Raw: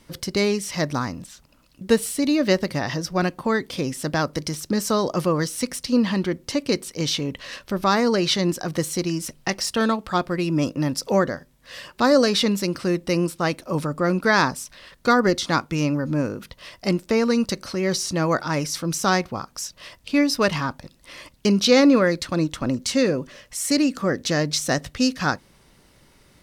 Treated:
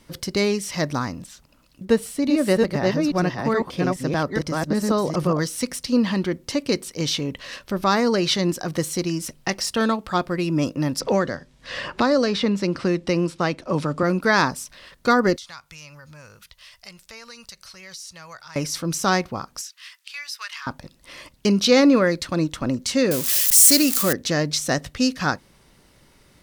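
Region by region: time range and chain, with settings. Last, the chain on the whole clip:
1.85–5.39 s: chunks repeated in reverse 423 ms, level -2 dB + treble shelf 2.5 kHz -7.5 dB
11.00–14.03 s: block-companded coder 7-bit + distance through air 84 m + three bands compressed up and down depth 70%
15.36–18.56 s: amplifier tone stack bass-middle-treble 10-0-10 + compression 2:1, threshold -43 dBFS
19.61–20.67 s: high-pass 1.4 kHz 24 dB/octave + compression 2:1, threshold -34 dBFS
23.11–24.13 s: zero-crossing glitches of -19.5 dBFS + treble shelf 3.3 kHz +10.5 dB
whole clip: none

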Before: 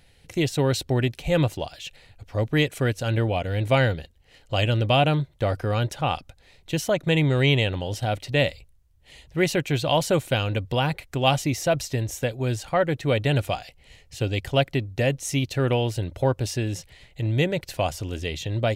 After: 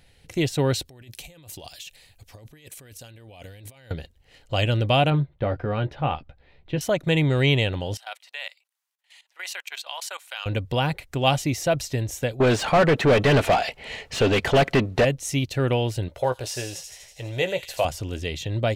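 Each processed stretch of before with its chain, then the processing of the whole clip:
0.85–3.91 s: pre-emphasis filter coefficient 0.8 + band-stop 1.4 kHz, Q 14 + compressor with a negative ratio -45 dBFS
5.10–6.81 s: distance through air 350 m + doubling 14 ms -8 dB
7.97–10.46 s: high-pass 900 Hz 24 dB/octave + level held to a coarse grid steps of 17 dB
12.40–15.05 s: comb 4.6 ms, depth 32% + overdrive pedal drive 30 dB, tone 1.3 kHz, clips at -8.5 dBFS + loudspeaker Doppler distortion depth 0.11 ms
16.08–17.85 s: resonant low shelf 380 Hz -9.5 dB, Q 1.5 + doubling 16 ms -9.5 dB + feedback echo behind a high-pass 81 ms, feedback 67%, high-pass 4.7 kHz, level -3 dB
whole clip: none

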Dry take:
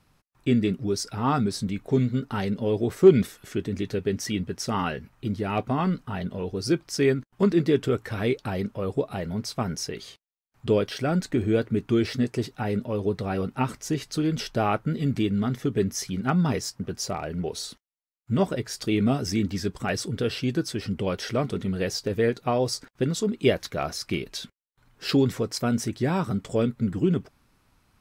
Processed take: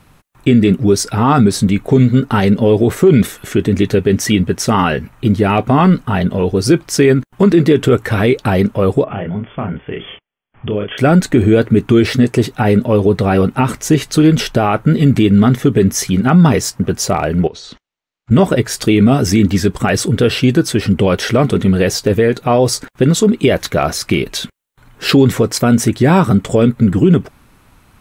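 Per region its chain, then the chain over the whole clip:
9.04–10.98 s: doubling 29 ms -3 dB + compression 2.5:1, threshold -38 dBFS + brick-wall FIR low-pass 3.5 kHz
17.47–18.31 s: low-pass 5.9 kHz 24 dB/octave + compression, threshold -43 dBFS
whole clip: peaking EQ 5 kHz -6.5 dB 0.53 oct; loudness maximiser +17 dB; trim -1 dB

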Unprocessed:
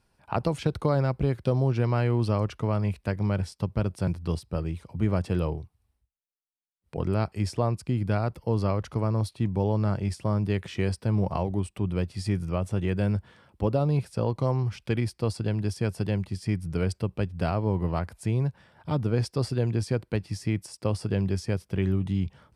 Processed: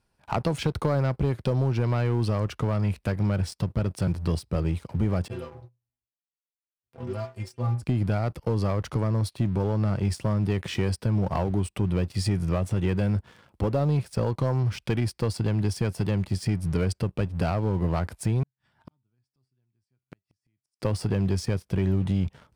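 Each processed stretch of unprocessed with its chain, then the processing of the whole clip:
5.28–7.82 s: inharmonic resonator 120 Hz, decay 0.35 s, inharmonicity 0.008 + tremolo triangle 3.4 Hz, depth 55%
18.43–20.80 s: peaking EQ 500 Hz -13 dB 0.56 oct + feedback comb 130 Hz, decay 0.24 s + inverted gate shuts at -36 dBFS, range -39 dB
whole clip: compression 3:1, threshold -28 dBFS; waveshaping leveller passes 2

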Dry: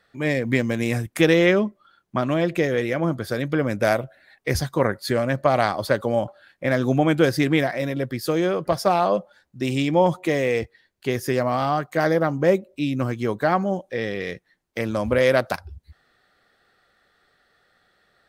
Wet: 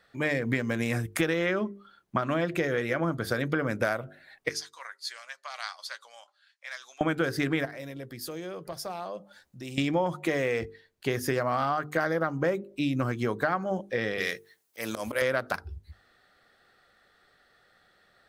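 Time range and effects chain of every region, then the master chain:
4.49–7.01 s: Chebyshev band-pass 990–5900 Hz + differentiator + doubling 13 ms -13.5 dB
7.65–9.78 s: compression 2:1, threshold -48 dBFS + treble shelf 4.1 kHz +7.5 dB
14.18–15.22 s: RIAA curve recording + slow attack 125 ms
whole clip: hum notches 50/100/150/200/250/300/350/400/450 Hz; dynamic bell 1.4 kHz, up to +8 dB, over -40 dBFS, Q 1.9; compression, threshold -24 dBFS

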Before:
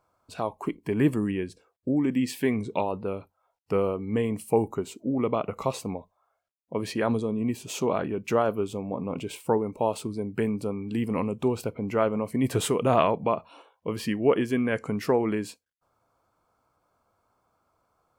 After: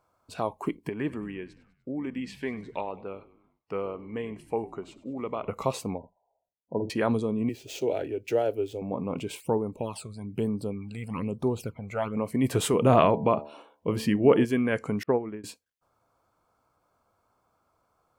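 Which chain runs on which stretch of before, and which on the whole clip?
0.89–5.48 s: band-pass filter 3 kHz, Q 0.53 + tilt EQ -3.5 dB/octave + frequency-shifting echo 99 ms, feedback 53%, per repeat -59 Hz, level -18 dB
5.98–6.90 s: brick-wall FIR low-pass 1 kHz + doubling 49 ms -7.5 dB
7.49–8.82 s: median filter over 5 samples + static phaser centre 460 Hz, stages 4
9.40–12.17 s: dynamic bell 310 Hz, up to -3 dB, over -34 dBFS, Q 0.76 + phase shifter stages 12, 1.1 Hz, lowest notch 290–2700 Hz
12.73–14.45 s: bass shelf 470 Hz +5.5 dB + de-hum 73.66 Hz, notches 13
15.03–15.44 s: low-pass 3.2 kHz 24 dB/octave + treble shelf 2 kHz -9 dB + upward expansion 2.5:1, over -42 dBFS
whole clip: none

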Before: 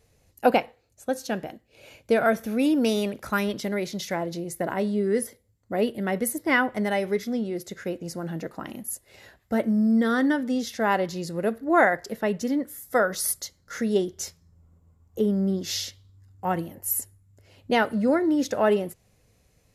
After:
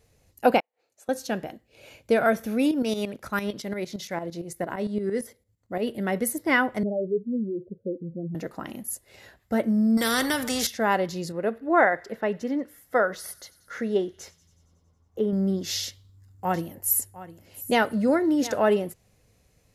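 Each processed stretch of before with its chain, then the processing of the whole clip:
0.60–1.09 s: high-pass 430 Hz + treble shelf 5.3 kHz -6.5 dB + inverted gate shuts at -38 dBFS, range -37 dB
2.71–5.87 s: treble shelf 12 kHz -4 dB + tremolo saw up 8.8 Hz, depth 70%
6.83–8.35 s: spectral contrast enhancement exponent 2 + steep low-pass 630 Hz 48 dB/octave
9.97–10.67 s: treble shelf 6.3 kHz +8 dB + spectrum-flattening compressor 2:1
11.32–15.33 s: tone controls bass -6 dB, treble -13 dB + feedback echo behind a high-pass 92 ms, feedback 69%, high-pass 3.1 kHz, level -18.5 dB
15.83–18.59 s: treble shelf 5.4 kHz +4 dB + delay 708 ms -16 dB
whole clip: none

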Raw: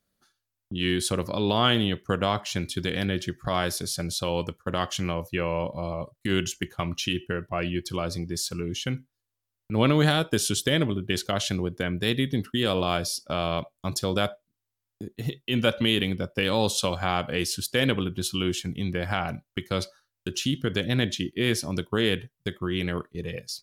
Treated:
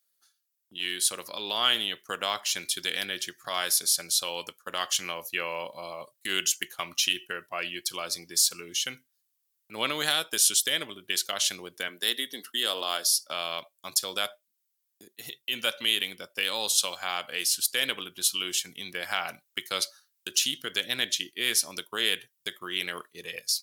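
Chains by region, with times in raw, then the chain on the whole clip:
11.88–13.31 s: high-pass 210 Hz 24 dB/octave + band-stop 2.4 kHz, Q 6.4
whole clip: tilt EQ +4 dB/octave; gain riding within 3 dB 2 s; high-pass 400 Hz 6 dB/octave; trim -4.5 dB

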